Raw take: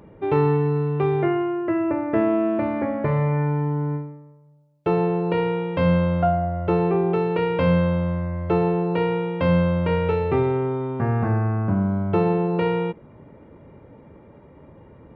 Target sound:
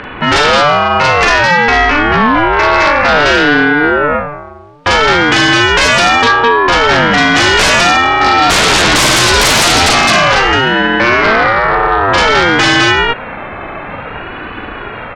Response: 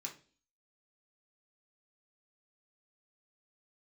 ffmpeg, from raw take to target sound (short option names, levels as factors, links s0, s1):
-filter_complex "[0:a]lowpass=2900,asettb=1/sr,asplit=3[s0][s1][s2];[s0]atrim=end=1.954[s3];[s1]atrim=start=1.95:end=2.53,asetpts=PTS-STARTPTS,afade=t=in:d=0.004:c=qsin,afade=t=out:st=0.576:d=0.004:c=qsin,equalizer=f=1800:t=o:w=1.5:g=-11[s4];[s2]atrim=start=2.526[s5];[s3][s4]acrossfade=d=0.004:c1=hsin:c2=qsin[s6];[s6][s5]acrossfade=d=0.004:c1=qsin:c2=hsin,highpass=f=240:p=1,asplit=3[s7][s8][s9];[s7]afade=t=out:st=8.2:d=0.02[s10];[s8]asplit=2[s11][s12];[s12]highpass=f=720:p=1,volume=17.8,asoftclip=type=tanh:threshold=0.335[s13];[s11][s13]amix=inputs=2:normalize=0,lowpass=f=1000:p=1,volume=0.501,afade=t=in:st=8.2:d=0.02,afade=t=out:st=9.88:d=0.02[s14];[s9]afade=t=in:st=9.88:d=0.02[s15];[s10][s14][s15]amix=inputs=3:normalize=0,aecho=1:1:40.82|209.9:0.708|0.708,acrossover=split=1000[s16][s17];[s16]acompressor=threshold=0.0282:ratio=6[s18];[s17]aeval=exprs='0.168*sin(PI/2*5.62*val(0)/0.168)':c=same[s19];[s18][s19]amix=inputs=2:normalize=0,alimiter=level_in=9.44:limit=0.891:release=50:level=0:latency=1,aeval=exprs='val(0)*sin(2*PI*420*n/s+420*0.45/0.55*sin(2*PI*0.55*n/s))':c=same"